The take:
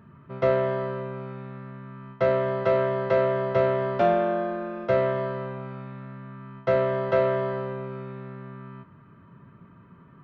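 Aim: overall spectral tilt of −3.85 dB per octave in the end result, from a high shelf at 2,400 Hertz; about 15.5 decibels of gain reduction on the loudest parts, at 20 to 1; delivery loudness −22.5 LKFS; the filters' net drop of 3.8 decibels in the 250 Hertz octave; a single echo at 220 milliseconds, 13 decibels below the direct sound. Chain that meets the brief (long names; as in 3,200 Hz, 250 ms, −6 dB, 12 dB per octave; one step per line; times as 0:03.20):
parametric band 250 Hz −7 dB
high-shelf EQ 2,400 Hz +4.5 dB
downward compressor 20 to 1, threshold −33 dBFS
single-tap delay 220 ms −13 dB
level +15.5 dB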